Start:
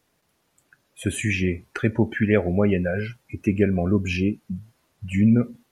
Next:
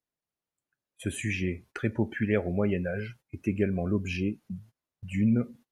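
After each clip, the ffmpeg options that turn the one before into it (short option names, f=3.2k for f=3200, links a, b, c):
-af "agate=range=-18dB:threshold=-43dB:ratio=16:detection=peak,volume=-7dB"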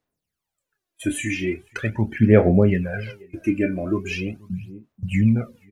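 -filter_complex "[0:a]asplit=2[a][b];[b]adelay=27,volume=-9.5dB[c];[a][c]amix=inputs=2:normalize=0,asplit=2[d][e];[e]adelay=484,volume=-24dB,highshelf=f=4k:g=-10.9[f];[d][f]amix=inputs=2:normalize=0,aphaser=in_gain=1:out_gain=1:delay=3.4:decay=0.71:speed=0.41:type=sinusoidal,volume=3.5dB"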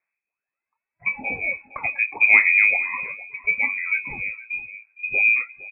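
-af "aecho=1:1:461:0.126,lowpass=f=2.2k:t=q:w=0.5098,lowpass=f=2.2k:t=q:w=0.6013,lowpass=f=2.2k:t=q:w=0.9,lowpass=f=2.2k:t=q:w=2.563,afreqshift=-2600,volume=-1dB"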